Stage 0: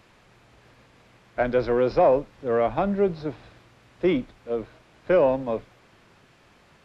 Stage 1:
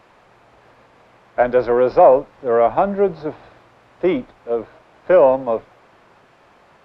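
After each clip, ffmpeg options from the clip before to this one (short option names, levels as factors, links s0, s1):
-af "equalizer=f=790:w=0.49:g=12,volume=0.75"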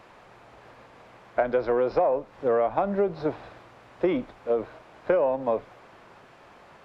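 -af "acompressor=threshold=0.1:ratio=8"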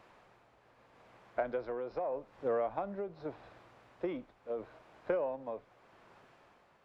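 -af "tremolo=f=0.81:d=0.54,volume=0.355"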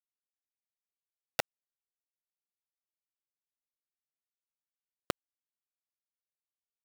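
-af "acrusher=bits=3:mix=0:aa=0.000001,volume=1.26"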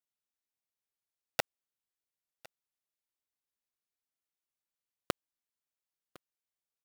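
-af "aecho=1:1:1056:0.0708"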